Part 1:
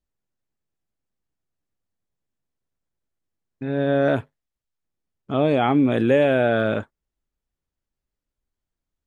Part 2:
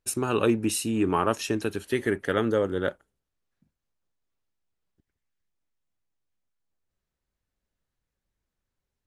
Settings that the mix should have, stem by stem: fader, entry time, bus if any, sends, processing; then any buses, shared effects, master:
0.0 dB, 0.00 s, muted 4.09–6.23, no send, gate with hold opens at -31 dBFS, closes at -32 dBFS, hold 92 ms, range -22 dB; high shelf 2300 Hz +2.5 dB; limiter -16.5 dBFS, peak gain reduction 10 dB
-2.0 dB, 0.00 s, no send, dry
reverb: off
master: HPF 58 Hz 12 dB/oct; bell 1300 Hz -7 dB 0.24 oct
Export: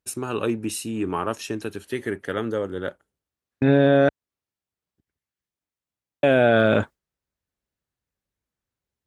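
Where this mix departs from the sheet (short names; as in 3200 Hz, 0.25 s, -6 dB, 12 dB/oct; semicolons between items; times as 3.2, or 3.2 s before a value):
stem 1 0.0 dB -> +10.0 dB; master: missing bell 1300 Hz -7 dB 0.24 oct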